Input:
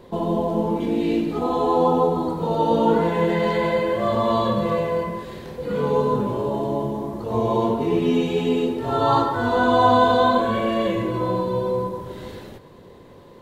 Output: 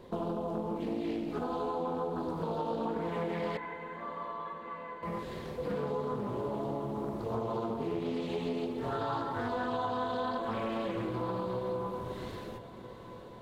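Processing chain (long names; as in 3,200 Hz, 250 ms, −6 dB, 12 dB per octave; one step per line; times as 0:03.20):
downward compressor 6 to 1, threshold −26 dBFS, peak gain reduction 14 dB
0:03.57–0:05.03: flat-topped band-pass 1,400 Hz, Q 1.1
on a send: feedback delay with all-pass diffusion 724 ms, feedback 69%, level −15 dB
on the sum: highs frequency-modulated by the lows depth 0.3 ms
level −5.5 dB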